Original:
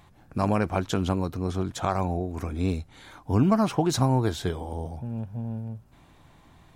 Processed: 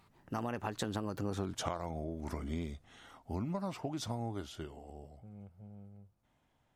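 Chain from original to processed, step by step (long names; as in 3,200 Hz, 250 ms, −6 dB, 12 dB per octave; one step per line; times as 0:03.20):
source passing by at 0:01.46, 41 m/s, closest 7 metres
low-shelf EQ 140 Hz −5.5 dB
downward compressor 20 to 1, threshold −43 dBFS, peak gain reduction 19 dB
level +10.5 dB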